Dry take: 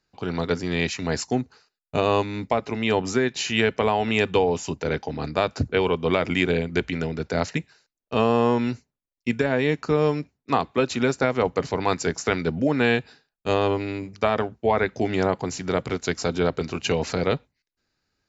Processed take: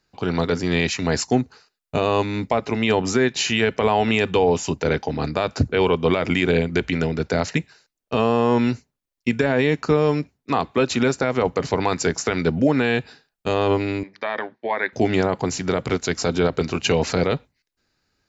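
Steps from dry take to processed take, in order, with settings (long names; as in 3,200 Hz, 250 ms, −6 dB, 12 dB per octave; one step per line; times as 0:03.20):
brickwall limiter −12.5 dBFS, peak gain reduction 7 dB
0:14.03–0:14.93: loudspeaker in its box 440–4,100 Hz, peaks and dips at 440 Hz −7 dB, 710 Hz −6 dB, 1,300 Hz −8 dB, 1,800 Hz +8 dB, 2,800 Hz −8 dB
level +5 dB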